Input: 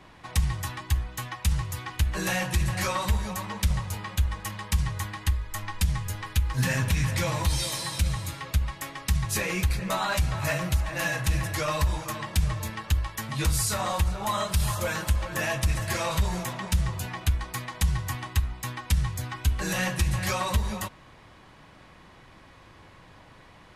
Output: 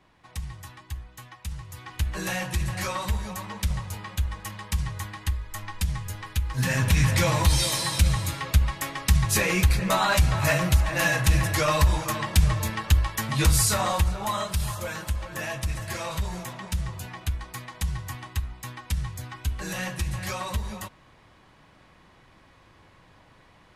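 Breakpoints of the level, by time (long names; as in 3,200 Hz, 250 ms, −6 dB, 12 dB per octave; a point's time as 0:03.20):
0:01.62 −10 dB
0:02.02 −2 dB
0:06.49 −2 dB
0:06.99 +5 dB
0:13.63 +5 dB
0:14.82 −4 dB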